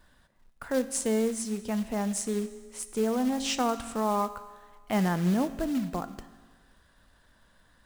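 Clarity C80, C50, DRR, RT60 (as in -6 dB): 15.0 dB, 13.5 dB, 11.5 dB, 1.5 s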